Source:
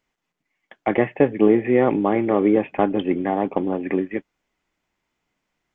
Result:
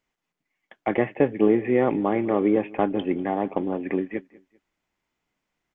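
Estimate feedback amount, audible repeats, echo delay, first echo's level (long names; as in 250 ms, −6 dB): 34%, 2, 197 ms, −23.0 dB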